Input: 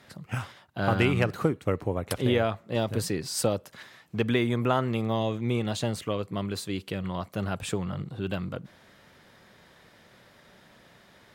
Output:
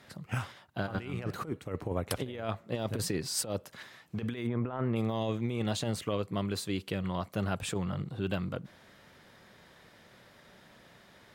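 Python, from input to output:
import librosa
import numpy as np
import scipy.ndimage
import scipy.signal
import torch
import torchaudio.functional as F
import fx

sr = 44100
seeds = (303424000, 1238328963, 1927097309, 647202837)

y = fx.lowpass(x, sr, hz=1800.0, slope=12, at=(4.46, 4.95), fade=0.02)
y = fx.over_compress(y, sr, threshold_db=-28.0, ratio=-0.5)
y = y * librosa.db_to_amplitude(-3.5)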